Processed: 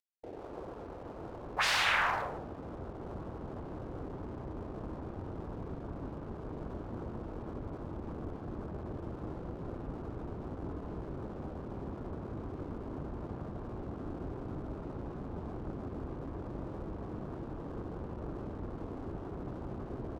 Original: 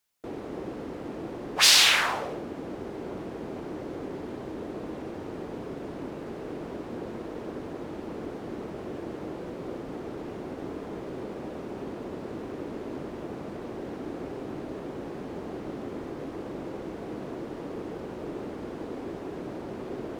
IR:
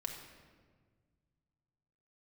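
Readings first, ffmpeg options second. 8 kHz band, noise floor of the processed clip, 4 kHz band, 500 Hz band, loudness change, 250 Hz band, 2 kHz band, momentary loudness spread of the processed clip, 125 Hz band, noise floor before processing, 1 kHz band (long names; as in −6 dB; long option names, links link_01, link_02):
below −15 dB, −45 dBFS, −14.5 dB, −7.5 dB, −8.5 dB, −6.0 dB, −5.5 dB, 3 LU, +2.0 dB, −39 dBFS, −2.5 dB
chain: -filter_complex "[0:a]afwtdn=0.01,asubboost=boost=8:cutoff=170,acrossover=split=110[link_01][link_02];[link_01]acontrast=85[link_03];[link_03][link_02]amix=inputs=2:normalize=0,acrossover=split=440 2000:gain=0.2 1 0.112[link_04][link_05][link_06];[link_04][link_05][link_06]amix=inputs=3:normalize=0,acompressor=mode=upward:threshold=-44dB:ratio=2.5,aeval=exprs='sgn(val(0))*max(abs(val(0))-0.00141,0)':channel_layout=same,asplit=2[link_07][link_08];[link_08]adelay=150,highpass=300,lowpass=3400,asoftclip=type=hard:threshold=-26dB,volume=-10dB[link_09];[link_07][link_09]amix=inputs=2:normalize=0"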